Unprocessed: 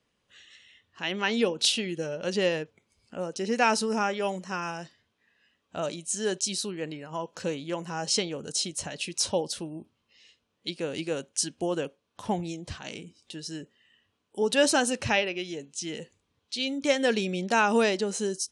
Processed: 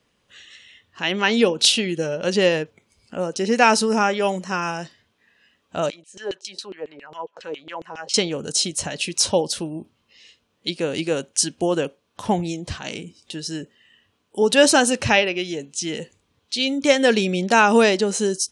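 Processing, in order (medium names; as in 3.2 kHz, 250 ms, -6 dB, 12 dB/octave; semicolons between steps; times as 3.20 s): 5.90–8.14 s: LFO band-pass saw down 7.3 Hz 380–3600 Hz; trim +8 dB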